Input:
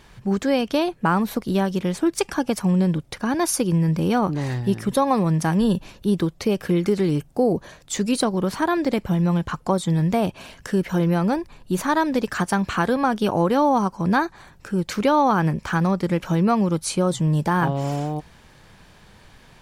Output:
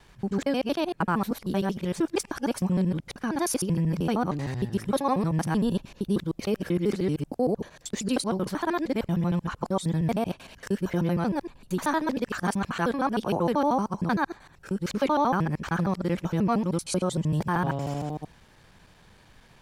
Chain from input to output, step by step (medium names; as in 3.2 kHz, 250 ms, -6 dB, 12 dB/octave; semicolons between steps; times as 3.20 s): time reversed locally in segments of 77 ms; trim -5.5 dB